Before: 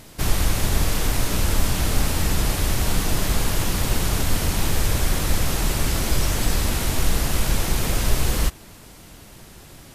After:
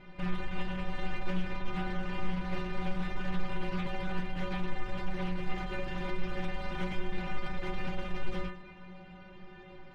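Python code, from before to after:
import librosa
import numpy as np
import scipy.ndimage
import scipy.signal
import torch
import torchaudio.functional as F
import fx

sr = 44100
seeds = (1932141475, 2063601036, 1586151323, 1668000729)

p1 = scipy.signal.sosfilt(scipy.signal.butter(4, 2800.0, 'lowpass', fs=sr, output='sos'), x)
p2 = fx.over_compress(p1, sr, threshold_db=-26.0, ratio=-1.0)
p3 = p1 + (p2 * librosa.db_to_amplitude(-2.5))
p4 = np.clip(p3, -10.0 ** (-16.5 / 20.0), 10.0 ** (-16.5 / 20.0))
p5 = fx.stiff_resonator(p4, sr, f0_hz=180.0, decay_s=0.42, stiffness=0.008)
p6 = p5 + fx.echo_feedback(p5, sr, ms=110, feedback_pct=53, wet_db=-17, dry=0)
p7 = fx.doppler_dist(p6, sr, depth_ms=0.11)
y = p7 * librosa.db_to_amplitude(2.0)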